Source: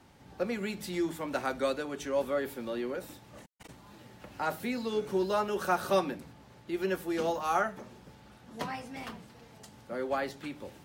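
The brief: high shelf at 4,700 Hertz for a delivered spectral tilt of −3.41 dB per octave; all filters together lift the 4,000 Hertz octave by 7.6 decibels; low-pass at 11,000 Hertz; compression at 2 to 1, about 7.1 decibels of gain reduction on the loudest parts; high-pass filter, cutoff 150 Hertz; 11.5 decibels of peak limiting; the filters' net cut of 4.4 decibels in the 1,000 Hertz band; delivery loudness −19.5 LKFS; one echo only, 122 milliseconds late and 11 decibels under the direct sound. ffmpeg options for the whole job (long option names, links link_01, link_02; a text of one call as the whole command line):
ffmpeg -i in.wav -af "highpass=150,lowpass=11000,equalizer=frequency=1000:width_type=o:gain=-7,equalizer=frequency=4000:width_type=o:gain=6.5,highshelf=frequency=4700:gain=6.5,acompressor=threshold=-38dB:ratio=2,alimiter=level_in=10.5dB:limit=-24dB:level=0:latency=1,volume=-10.5dB,aecho=1:1:122:0.282,volume=24.5dB" out.wav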